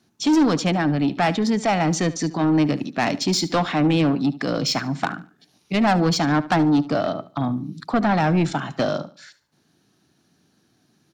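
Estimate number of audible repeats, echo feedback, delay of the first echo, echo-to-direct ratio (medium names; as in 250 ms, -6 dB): 2, 30%, 73 ms, -16.5 dB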